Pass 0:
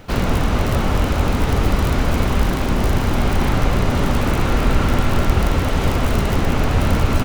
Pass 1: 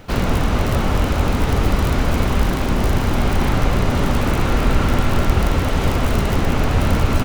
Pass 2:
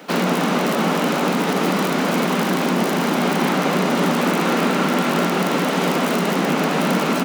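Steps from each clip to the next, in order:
no processing that can be heard
Butterworth high-pass 160 Hz 96 dB per octave; in parallel at +0.5 dB: brickwall limiter −13.5 dBFS, peak gain reduction 8 dB; on the sum: level −2.5 dB

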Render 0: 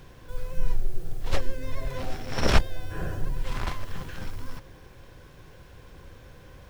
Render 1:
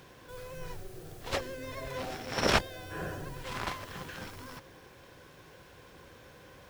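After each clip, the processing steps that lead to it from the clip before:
high-pass filter 260 Hz 6 dB per octave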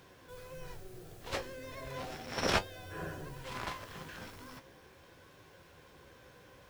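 flanger 0.37 Hz, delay 9.9 ms, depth 9.1 ms, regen +54%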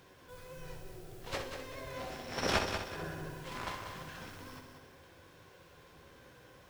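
echo machine with several playback heads 63 ms, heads first and third, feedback 50%, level −8 dB
level −1.5 dB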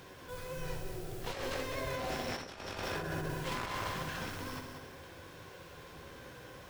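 compressor whose output falls as the input rises −43 dBFS, ratio −1
level +4.5 dB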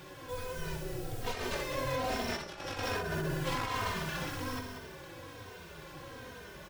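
barber-pole flanger 3 ms −1.2 Hz
level +6 dB

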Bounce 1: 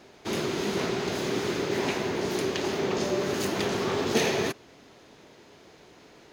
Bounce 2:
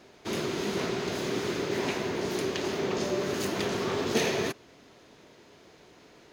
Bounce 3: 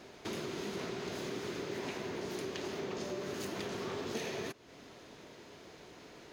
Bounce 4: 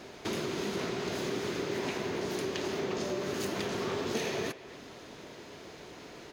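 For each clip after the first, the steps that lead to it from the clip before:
notch filter 820 Hz, Q 21; level −2 dB
downward compressor 3 to 1, threshold −42 dBFS, peak gain reduction 15.5 dB; level +1.5 dB
far-end echo of a speakerphone 260 ms, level −14 dB; level +5.5 dB

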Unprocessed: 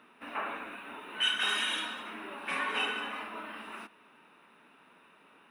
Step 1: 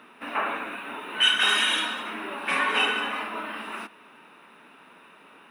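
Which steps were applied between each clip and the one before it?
low-shelf EQ 97 Hz −6 dB
level +8.5 dB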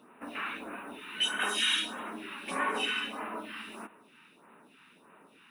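all-pass phaser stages 2, 1.6 Hz, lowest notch 540–4,600 Hz
level −3 dB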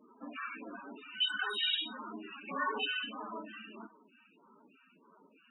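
spectral peaks only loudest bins 16
level −1.5 dB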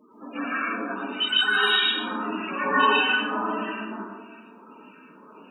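dense smooth reverb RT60 1.4 s, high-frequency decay 0.3×, pre-delay 105 ms, DRR −9.5 dB
level +5 dB

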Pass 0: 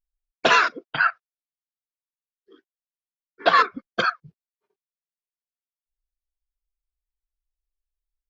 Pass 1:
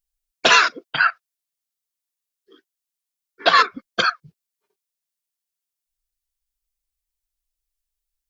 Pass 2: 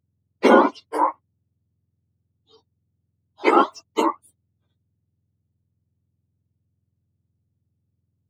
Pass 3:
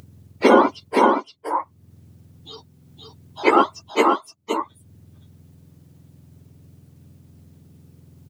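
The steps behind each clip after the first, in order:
high-shelf EQ 2,800 Hz +12 dB
frequency axis turned over on the octave scale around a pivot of 1,200 Hz
harmonic and percussive parts rebalanced percussive +5 dB; upward compression, threshold −23 dBFS; on a send: single-tap delay 519 ms −4.5 dB; on the sum: level −2.5 dB

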